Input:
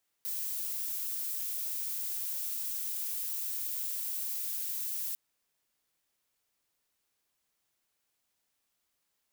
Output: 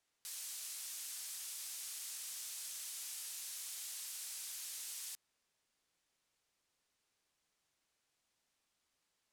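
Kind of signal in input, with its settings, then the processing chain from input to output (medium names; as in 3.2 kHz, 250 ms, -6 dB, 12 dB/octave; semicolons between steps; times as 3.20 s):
noise violet, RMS -35.5 dBFS 4.90 s
low-pass 8.7 kHz 12 dB/octave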